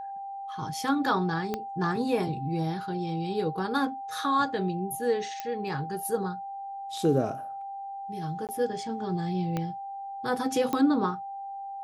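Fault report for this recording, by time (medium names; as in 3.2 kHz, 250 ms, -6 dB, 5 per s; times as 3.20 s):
whine 790 Hz -35 dBFS
1.54 s: pop -16 dBFS
5.40 s: pop -18 dBFS
8.47–8.49 s: dropout 18 ms
9.57 s: pop -17 dBFS
10.73 s: pop -15 dBFS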